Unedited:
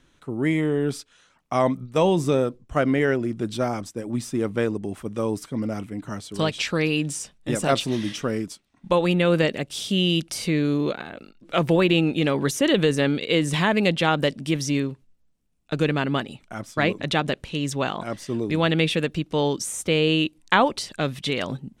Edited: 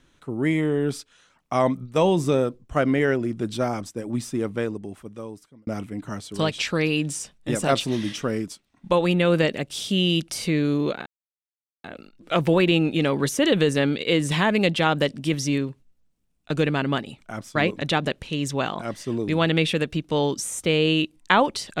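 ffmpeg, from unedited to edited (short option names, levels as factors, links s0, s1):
-filter_complex "[0:a]asplit=3[s0][s1][s2];[s0]atrim=end=5.67,asetpts=PTS-STARTPTS,afade=t=out:st=4.2:d=1.47[s3];[s1]atrim=start=5.67:end=11.06,asetpts=PTS-STARTPTS,afade=t=in:d=0.004:c=hsin,afade=t=out:st=5.386:d=0.004:c=hsin,apad=pad_dur=0.78[s4];[s2]atrim=start=11.06,asetpts=PTS-STARTPTS,afade=t=in:d=0.004:c=hsin[s5];[s3][s4][s5]concat=n=3:v=0:a=1"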